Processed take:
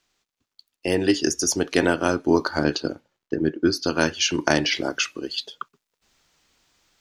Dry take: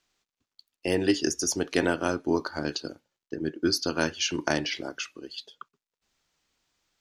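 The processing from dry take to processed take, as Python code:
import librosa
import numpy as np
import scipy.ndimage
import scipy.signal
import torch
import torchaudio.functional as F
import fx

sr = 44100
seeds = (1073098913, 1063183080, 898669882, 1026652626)

y = fx.rider(x, sr, range_db=4, speed_s=0.5)
y = fx.high_shelf(y, sr, hz=3700.0, db=-10.0, at=(2.64, 3.84))
y = y * 10.0 ** (6.5 / 20.0)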